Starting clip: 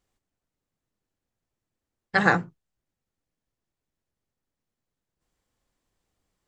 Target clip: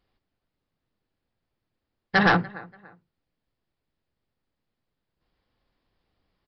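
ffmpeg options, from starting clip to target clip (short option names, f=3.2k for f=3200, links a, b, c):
-filter_complex "[0:a]asplit=2[a][b];[b]adelay=289,lowpass=f=3.3k:p=1,volume=-23.5dB,asplit=2[c][d];[d]adelay=289,lowpass=f=3.3k:p=1,volume=0.31[e];[a][c][e]amix=inputs=3:normalize=0,aresample=11025,asoftclip=type=hard:threshold=-17.5dB,aresample=44100,volume=4dB"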